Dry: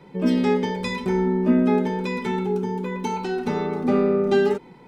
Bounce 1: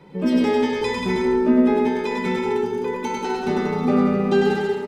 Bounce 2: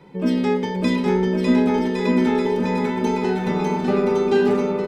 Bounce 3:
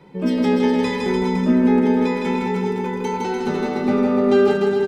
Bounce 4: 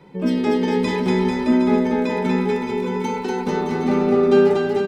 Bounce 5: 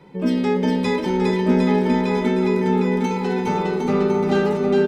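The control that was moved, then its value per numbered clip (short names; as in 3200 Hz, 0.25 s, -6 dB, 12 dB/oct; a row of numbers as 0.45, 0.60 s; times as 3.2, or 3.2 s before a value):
bouncing-ball echo, first gap: 0.1, 0.6, 0.16, 0.24, 0.41 s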